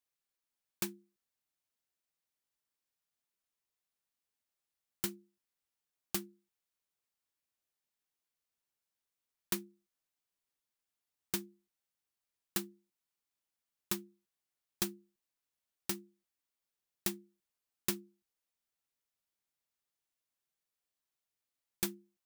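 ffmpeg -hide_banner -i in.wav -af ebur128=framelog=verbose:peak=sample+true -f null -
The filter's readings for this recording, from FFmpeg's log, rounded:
Integrated loudness:
  I:         -39.4 LUFS
  Threshold: -50.3 LUFS
Loudness range:
  LRA:         6.0 LU
  Threshold: -65.3 LUFS
  LRA low:   -48.8 LUFS
  LRA high:  -42.8 LUFS
Sample peak:
  Peak:      -17.1 dBFS
True peak:
  Peak:      -15.2 dBFS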